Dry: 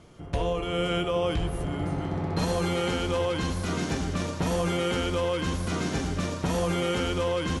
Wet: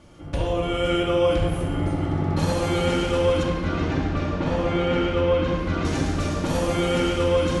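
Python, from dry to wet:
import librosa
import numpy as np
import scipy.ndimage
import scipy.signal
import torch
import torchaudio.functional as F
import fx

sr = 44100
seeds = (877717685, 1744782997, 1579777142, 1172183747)

y = fx.lowpass(x, sr, hz=3100.0, slope=12, at=(3.43, 5.85))
y = fx.room_shoebox(y, sr, seeds[0], volume_m3=2100.0, walls='mixed', distance_m=2.4)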